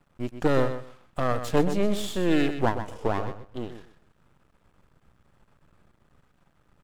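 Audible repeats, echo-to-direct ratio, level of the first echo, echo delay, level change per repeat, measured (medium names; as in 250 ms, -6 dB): 2, -10.0 dB, -10.0 dB, 126 ms, -14.5 dB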